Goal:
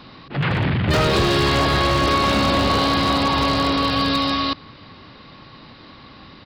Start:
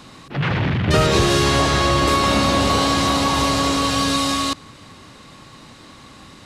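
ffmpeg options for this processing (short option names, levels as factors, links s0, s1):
-af "aresample=11025,aresample=44100,aeval=exprs='0.266*(abs(mod(val(0)/0.266+3,4)-2)-1)':c=same"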